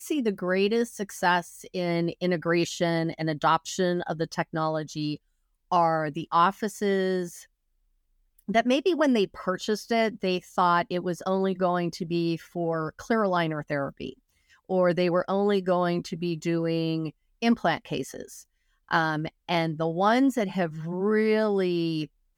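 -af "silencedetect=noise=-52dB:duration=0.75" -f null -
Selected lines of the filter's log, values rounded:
silence_start: 7.46
silence_end: 8.39 | silence_duration: 0.93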